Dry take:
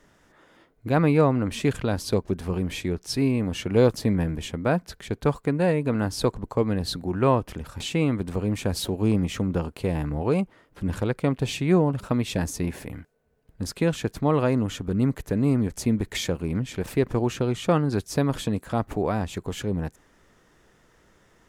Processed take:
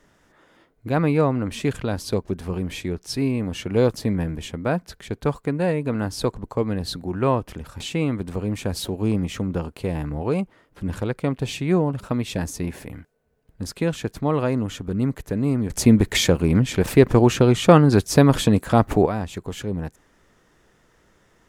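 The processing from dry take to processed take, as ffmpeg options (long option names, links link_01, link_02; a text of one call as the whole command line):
ffmpeg -i in.wav -filter_complex "[0:a]asplit=3[link_01][link_02][link_03];[link_01]atrim=end=15.702[link_04];[link_02]atrim=start=15.698:end=19.062,asetpts=PTS-STARTPTS,volume=9dB[link_05];[link_03]atrim=start=19.058[link_06];[link_04][link_05]acrossfade=duration=0.004:curve1=hsin:curve2=hsin[link_07];[link_07][link_06]acrossfade=duration=0.004:curve1=hsin:curve2=hsin" out.wav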